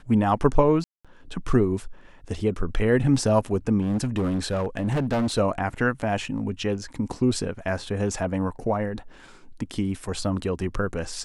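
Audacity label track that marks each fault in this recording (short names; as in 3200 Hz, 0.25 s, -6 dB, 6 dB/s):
0.840000	1.050000	gap 0.206 s
3.810000	5.390000	clipped -20.5 dBFS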